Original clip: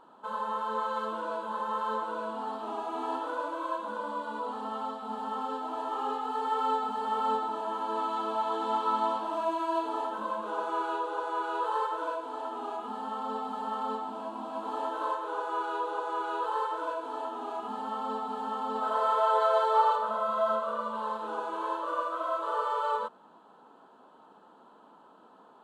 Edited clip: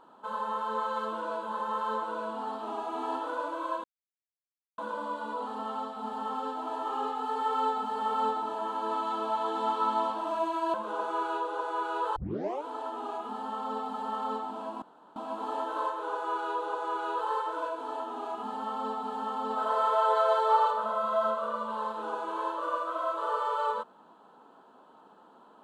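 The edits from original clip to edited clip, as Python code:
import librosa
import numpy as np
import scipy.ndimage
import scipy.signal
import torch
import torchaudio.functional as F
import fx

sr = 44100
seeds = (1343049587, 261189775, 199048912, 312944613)

y = fx.edit(x, sr, fx.insert_silence(at_s=3.84, length_s=0.94),
    fx.cut(start_s=9.8, length_s=0.53),
    fx.tape_start(start_s=11.75, length_s=0.49),
    fx.insert_room_tone(at_s=14.41, length_s=0.34), tone=tone)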